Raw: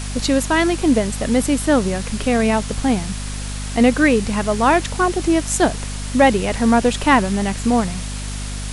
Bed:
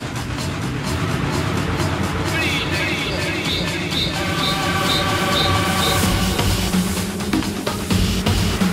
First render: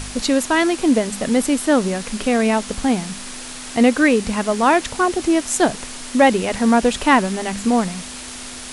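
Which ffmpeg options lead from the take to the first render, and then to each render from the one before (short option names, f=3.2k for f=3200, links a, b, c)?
-af "bandreject=f=50:t=h:w=4,bandreject=f=100:t=h:w=4,bandreject=f=150:t=h:w=4,bandreject=f=200:t=h:w=4"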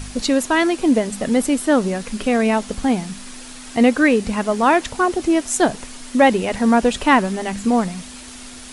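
-af "afftdn=nr=6:nf=-33"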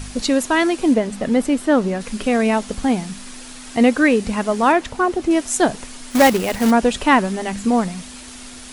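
-filter_complex "[0:a]asettb=1/sr,asplit=3[a][b][c];[a]atrim=end=0.944[d];[b]atrim=start=0.94:end=2.01,asetpts=PTS-STARTPTS,afade=t=in:d=0.004:c=qsin,afade=t=out:st=1.066:d=0.004:c=qsin,aemphasis=mode=reproduction:type=cd[e];[c]atrim=start=2.006[f];[d][e]acrossfade=d=0.004:c1=hsin:c2=qsin[g];[g][f]acrossfade=d=0.004:c1=qsin:c2=hsin,asettb=1/sr,asplit=3[h][i][j];[h]atrim=end=4.724[k];[i]atrim=start=4.72:end=5.31,asetpts=PTS-STARTPTS,afade=t=in:d=0.004:c=qsin,afade=t=out:st=0.586:d=0.004:c=qsin,highshelf=f=3.6k:g=-7.5[l];[j]atrim=start=5.306[m];[k][l]acrossfade=d=0.004:c1=hsin:c2=qsin[n];[n][m]acrossfade=d=0.004:c1=qsin:c2=hsin,asplit=3[o][p][q];[o]afade=t=out:st=6.1:d=0.02[r];[p]acrusher=bits=2:mode=log:mix=0:aa=0.000001,afade=t=in:st=6.1:d=0.02,afade=t=out:st=6.7:d=0.02[s];[q]afade=t=in:st=6.7:d=0.02[t];[r][s][t]amix=inputs=3:normalize=0"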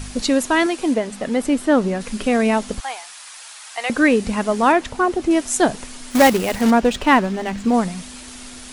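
-filter_complex "[0:a]asettb=1/sr,asplit=3[a][b][c];[a]atrim=end=0.664[d];[b]atrim=start=0.66:end=1.44,asetpts=PTS-STARTPTS,afade=t=in:d=0.004:c=qsin,afade=t=out:st=0.776:d=0.004:c=qsin,lowshelf=f=280:g=-8[e];[c]atrim=start=1.436[f];[d][e]acrossfade=d=0.004:c1=hsin:c2=qsin[g];[g][f]acrossfade=d=0.004:c1=qsin:c2=hsin,asettb=1/sr,asplit=3[h][i][j];[h]atrim=end=2.804[k];[i]atrim=start=2.8:end=3.9,asetpts=PTS-STARTPTS,afade=t=in:d=0.004:c=qsin,afade=t=out:st=1.096:d=0.004:c=qsin,highpass=f=760:w=0.5412,highpass=f=760:w=1.3066[l];[j]atrim=start=3.896[m];[k][l]acrossfade=d=0.004:c1=hsin:c2=qsin[n];[n][m]acrossfade=d=0.004:c1=qsin:c2=hsin,asettb=1/sr,asplit=3[o][p][q];[o]atrim=end=6.614[r];[p]atrim=start=6.61:end=7.74,asetpts=PTS-STARTPTS,afade=t=in:d=0.004:c=qsin,afade=t=out:st=1.126:d=0.004:c=qsin,adynamicsmooth=sensitivity=5.5:basefreq=4k[s];[q]atrim=start=7.736[t];[r][s]acrossfade=d=0.004:c1=hsin:c2=qsin[u];[u][t]acrossfade=d=0.004:c1=qsin:c2=hsin"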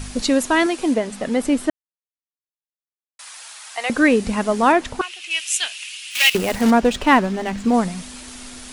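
-filter_complex "[0:a]asettb=1/sr,asplit=3[a][b][c];[a]atrim=end=5.014[d];[b]atrim=start=5.01:end=6.35,asetpts=PTS-STARTPTS,afade=t=in:d=0.004:c=qsin,afade=t=out:st=1.336:d=0.004:c=qsin,highpass=f=2.7k:t=q:w=5.9[e];[c]atrim=start=6.346[f];[d][e]acrossfade=d=0.004:c1=hsin:c2=qsin[g];[g][f]acrossfade=d=0.004:c1=qsin:c2=hsin,asplit=3[h][i][j];[h]atrim=end=1.7,asetpts=PTS-STARTPTS,afade=t=out:st=1.696:d=0.004:c=hsin[k];[i]atrim=start=1.7:end=3.19,asetpts=PTS-STARTPTS,volume=0[l];[j]atrim=start=3.19,asetpts=PTS-STARTPTS,afade=t=in:d=0.004:c=hsin[m];[k][l][m]concat=n=3:v=0:a=1"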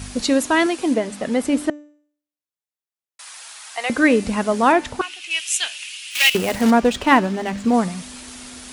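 -af "highpass=46,bandreject=f=295.9:t=h:w=4,bandreject=f=591.8:t=h:w=4,bandreject=f=887.7:t=h:w=4,bandreject=f=1.1836k:t=h:w=4,bandreject=f=1.4795k:t=h:w=4,bandreject=f=1.7754k:t=h:w=4,bandreject=f=2.0713k:t=h:w=4,bandreject=f=2.3672k:t=h:w=4,bandreject=f=2.6631k:t=h:w=4,bandreject=f=2.959k:t=h:w=4,bandreject=f=3.2549k:t=h:w=4,bandreject=f=3.5508k:t=h:w=4,bandreject=f=3.8467k:t=h:w=4,bandreject=f=4.1426k:t=h:w=4,bandreject=f=4.4385k:t=h:w=4,bandreject=f=4.7344k:t=h:w=4,bandreject=f=5.0303k:t=h:w=4,bandreject=f=5.3262k:t=h:w=4,bandreject=f=5.6221k:t=h:w=4,bandreject=f=5.918k:t=h:w=4,bandreject=f=6.2139k:t=h:w=4,bandreject=f=6.5098k:t=h:w=4,bandreject=f=6.8057k:t=h:w=4,bandreject=f=7.1016k:t=h:w=4,bandreject=f=7.3975k:t=h:w=4,bandreject=f=7.6934k:t=h:w=4"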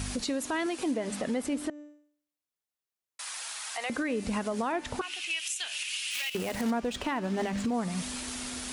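-af "acompressor=threshold=-24dB:ratio=6,alimiter=limit=-22.5dB:level=0:latency=1:release=103"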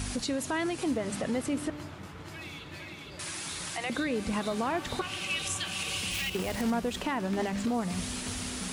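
-filter_complex "[1:a]volume=-23dB[a];[0:a][a]amix=inputs=2:normalize=0"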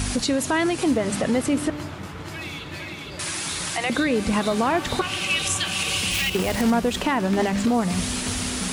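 -af "volume=9dB"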